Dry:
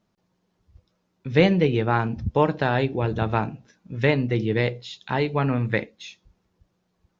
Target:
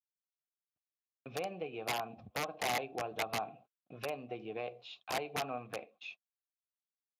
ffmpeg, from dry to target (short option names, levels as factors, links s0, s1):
-filter_complex "[0:a]agate=range=0.00562:threshold=0.00708:ratio=16:detection=peak,adynamicequalizer=threshold=0.00794:dfrequency=990:dqfactor=6.2:tfrequency=990:tqfactor=6.2:attack=5:release=100:ratio=0.375:range=1.5:mode=cutabove:tftype=bell,acompressor=threshold=0.0398:ratio=10,asplit=3[s0][s1][s2];[s0]bandpass=f=730:t=q:w=8,volume=1[s3];[s1]bandpass=f=1090:t=q:w=8,volume=0.501[s4];[s2]bandpass=f=2440:t=q:w=8,volume=0.355[s5];[s3][s4][s5]amix=inputs=3:normalize=0,aeval=exprs='(mod(59.6*val(0)+1,2)-1)/59.6':c=same,volume=2.66" -ar 32000 -c:a libspeex -b:a 36k